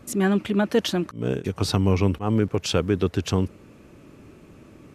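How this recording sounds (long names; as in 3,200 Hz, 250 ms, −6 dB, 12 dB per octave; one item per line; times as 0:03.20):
background noise floor −50 dBFS
spectral slope −6.0 dB per octave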